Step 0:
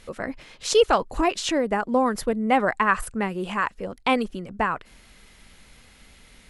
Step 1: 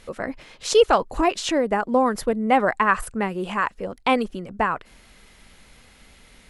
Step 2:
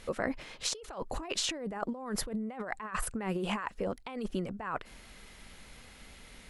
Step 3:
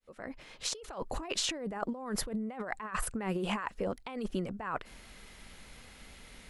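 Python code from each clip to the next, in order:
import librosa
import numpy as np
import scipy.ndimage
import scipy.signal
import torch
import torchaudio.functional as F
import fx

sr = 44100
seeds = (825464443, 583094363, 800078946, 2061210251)

y1 = fx.peak_eq(x, sr, hz=650.0, db=2.5, octaves=2.3)
y2 = fx.over_compress(y1, sr, threshold_db=-29.0, ratio=-1.0)
y2 = y2 * librosa.db_to_amplitude(-7.5)
y3 = fx.fade_in_head(y2, sr, length_s=0.83)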